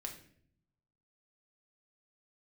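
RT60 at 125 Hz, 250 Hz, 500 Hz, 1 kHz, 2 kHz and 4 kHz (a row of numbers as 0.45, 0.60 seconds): 1.3, 1.0, 0.70, 0.45, 0.55, 0.45 seconds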